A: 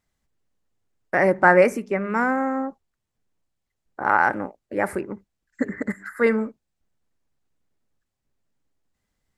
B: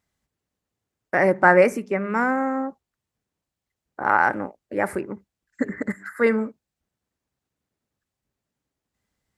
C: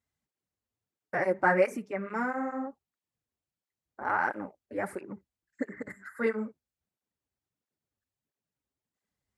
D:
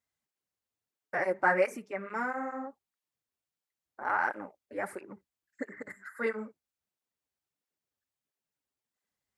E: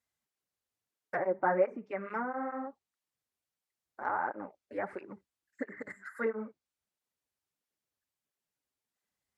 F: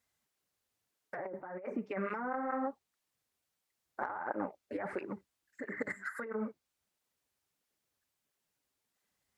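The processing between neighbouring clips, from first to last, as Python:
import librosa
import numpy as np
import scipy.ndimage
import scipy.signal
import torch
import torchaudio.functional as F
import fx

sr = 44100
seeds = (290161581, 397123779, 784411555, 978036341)

y1 = scipy.signal.sosfilt(scipy.signal.butter(2, 51.0, 'highpass', fs=sr, output='sos'), x)
y2 = fx.flanger_cancel(y1, sr, hz=1.5, depth_ms=6.9)
y2 = F.gain(torch.from_numpy(y2), -6.5).numpy()
y3 = fx.low_shelf(y2, sr, hz=310.0, db=-10.0)
y4 = fx.env_lowpass_down(y3, sr, base_hz=1000.0, full_db=-28.5)
y5 = fx.over_compress(y4, sr, threshold_db=-39.0, ratio=-1.0)
y5 = F.gain(torch.from_numpy(y5), 1.0).numpy()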